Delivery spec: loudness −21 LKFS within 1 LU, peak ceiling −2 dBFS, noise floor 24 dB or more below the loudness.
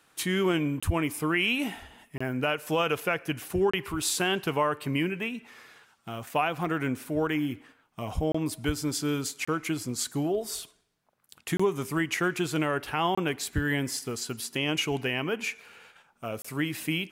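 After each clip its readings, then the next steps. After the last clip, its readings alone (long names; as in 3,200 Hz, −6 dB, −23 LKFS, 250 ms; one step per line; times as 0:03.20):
number of dropouts 8; longest dropout 25 ms; integrated loudness −29.0 LKFS; sample peak −13.0 dBFS; target loudness −21.0 LKFS
→ repair the gap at 0:00.80/0:02.18/0:03.71/0:08.32/0:09.45/0:11.57/0:13.15/0:16.42, 25 ms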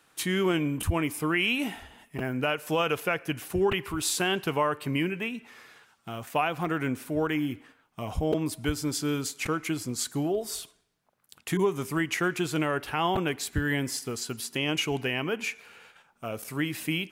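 number of dropouts 0; integrated loudness −29.0 LKFS; sample peak −13.0 dBFS; target loudness −21.0 LKFS
→ level +8 dB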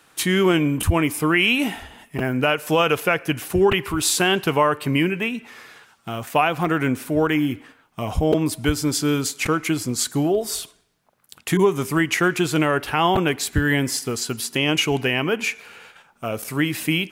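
integrated loudness −21.0 LKFS; sample peak −5.0 dBFS; background noise floor −59 dBFS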